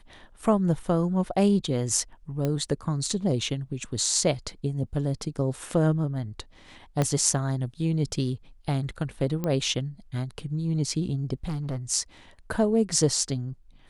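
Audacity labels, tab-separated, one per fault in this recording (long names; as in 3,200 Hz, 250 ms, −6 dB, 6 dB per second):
2.450000	2.450000	click −15 dBFS
7.020000	7.020000	click −11 dBFS
9.440000	9.440000	click −16 dBFS
11.440000	11.780000	clipping −27 dBFS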